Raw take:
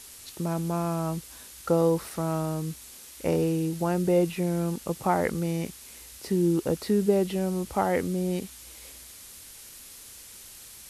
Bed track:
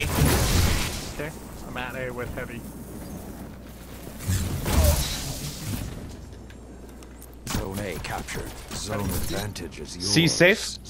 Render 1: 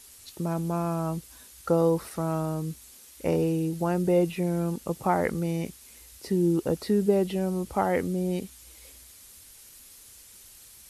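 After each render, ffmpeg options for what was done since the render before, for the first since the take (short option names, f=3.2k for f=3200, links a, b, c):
-af "afftdn=nr=6:nf=-47"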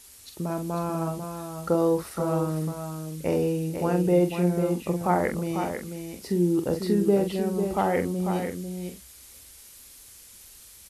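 -filter_complex "[0:a]asplit=2[a][b];[b]adelay=45,volume=-7.5dB[c];[a][c]amix=inputs=2:normalize=0,aecho=1:1:495:0.447"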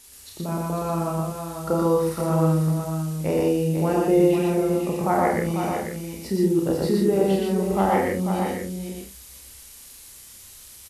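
-filter_complex "[0:a]asplit=2[a][b];[b]adelay=31,volume=-5dB[c];[a][c]amix=inputs=2:normalize=0,aecho=1:1:87.46|119.5:0.355|0.891"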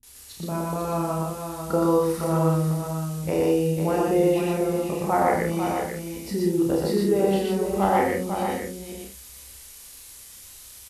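-filter_complex "[0:a]asplit=2[a][b];[b]adelay=27,volume=-12dB[c];[a][c]amix=inputs=2:normalize=0,acrossover=split=210[d][e];[e]adelay=30[f];[d][f]amix=inputs=2:normalize=0"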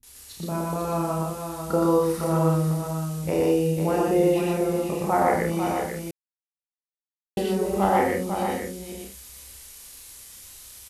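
-filter_complex "[0:a]asplit=3[a][b][c];[a]atrim=end=6.11,asetpts=PTS-STARTPTS,afade=t=out:st=6.106:d=0.004:c=hsin[d];[b]atrim=start=6.11:end=7.37,asetpts=PTS-STARTPTS,volume=0[e];[c]atrim=start=7.37,asetpts=PTS-STARTPTS,afade=t=in:d=0.004:c=hsin[f];[d][e][f]concat=n=3:v=0:a=1"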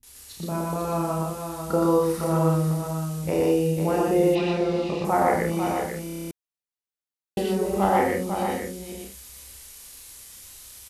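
-filter_complex "[0:a]asettb=1/sr,asplit=3[a][b][c];[a]atrim=end=4.354[d];[b]atrim=start=4.35:end=5.05,asetpts=PTS-STARTPTS,afade=t=in:d=0.004:c=qsin,afade=t=out:st=0.696:d=0.004:c=qsin,lowpass=f=4.1k:t=q:w=2.3[e];[c]atrim=start=5.046[f];[d][e]acrossfade=d=0.004:c1=hsin:c2=qsin[g];[g][f]acrossfade=d=0.004:c1=qsin:c2=hsin,asplit=10[h][i][j][k][l][m][n][o][p][q];[h]atrim=end=6.072[r];[i]atrim=start=6.038:end=6.072[s];[j]atrim=start=6.038:end=6.072[t];[k]atrim=start=6.038:end=6.072[u];[l]atrim=start=6.038:end=6.072[v];[m]atrim=start=6.038:end=6.072[w];[n]atrim=start=6.038:end=6.072[x];[o]atrim=start=6.038:end=6.072[y];[p]atrim=start=6.038:end=6.072[z];[q]atrim=start=6.308[aa];[r][s]acrossfade=d=0.004:c1=hsin:c2=hsin[ab];[ab][t]acrossfade=d=0.004:c1=hsin:c2=hsin[ac];[ac][u]acrossfade=d=0.004:c1=hsin:c2=hsin[ad];[ad][v]acrossfade=d=0.004:c1=hsin:c2=hsin[ae];[ae][w]acrossfade=d=0.004:c1=hsin:c2=hsin[af];[af][x]acrossfade=d=0.004:c1=hsin:c2=hsin[ag];[ag][y]acrossfade=d=0.004:c1=hsin:c2=hsin[ah];[ah][z]acrossfade=d=0.004:c1=hsin:c2=hsin[ai];[ai][aa]acrossfade=d=0.004:c1=hsin:c2=hsin"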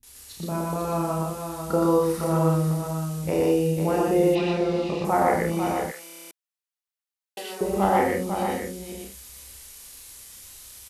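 -filter_complex "[0:a]asettb=1/sr,asplit=3[a][b][c];[a]atrim=end=5.914[d];[b]atrim=start=5.91:end=7.61,asetpts=PTS-STARTPTS,afade=t=in:d=0.004:c=qsin,afade=t=out:st=1.696:d=0.004:c=qsin,highpass=850[e];[c]atrim=start=7.606[f];[d][e]acrossfade=d=0.004:c1=hsin:c2=qsin[g];[g][f]acrossfade=d=0.004:c1=qsin:c2=hsin"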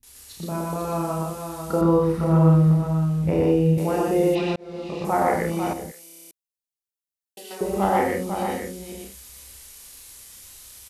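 -filter_complex "[0:a]asettb=1/sr,asplit=3[a][b][c];[a]atrim=end=1.814[d];[b]atrim=start=1.81:end=3.78,asetpts=PTS-STARTPTS,afade=t=in:d=0.004:c=qsin,afade=t=out:st=1.966:d=0.004:c=qsin,bass=f=250:g=9,treble=f=4k:g=-12[e];[c]atrim=start=3.776[f];[d][e]acrossfade=d=0.004:c1=hsin:c2=qsin[g];[g][f]acrossfade=d=0.004:c1=qsin:c2=hsin,asettb=1/sr,asplit=3[h][i][j];[h]atrim=end=5.734[k];[i]atrim=start=5.73:end=7.51,asetpts=PTS-STARTPTS,afade=t=in:d=0.004:c=qsin,afade=t=out:st=1.776:d=0.004:c=qsin,equalizer=f=1.3k:t=o:w=2.6:g=-14[l];[j]atrim=start=7.506[m];[k][l]acrossfade=d=0.004:c1=hsin:c2=qsin[n];[n][m]acrossfade=d=0.004:c1=qsin:c2=hsin,asplit=2[o][p];[o]atrim=end=4.56,asetpts=PTS-STARTPTS,afade=t=out:st=4.556:d=0.004:c=hsin[q];[p]atrim=start=4.56,asetpts=PTS-STARTPTS,afade=t=in:d=0.55[r];[q][r]concat=n=2:v=0:a=1"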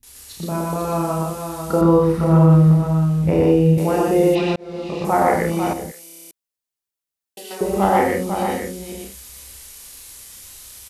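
-af "volume=4.5dB,alimiter=limit=-3dB:level=0:latency=1"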